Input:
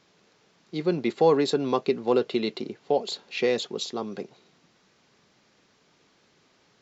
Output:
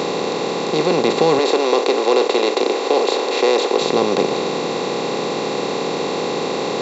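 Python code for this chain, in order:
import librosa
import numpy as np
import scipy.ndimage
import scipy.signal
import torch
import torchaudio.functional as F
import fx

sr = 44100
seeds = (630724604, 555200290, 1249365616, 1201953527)

y = fx.bin_compress(x, sr, power=0.2)
y = fx.highpass(y, sr, hz=300.0, slope=24, at=(1.39, 3.81))
y = y * 10.0 ** (1.0 / 20.0)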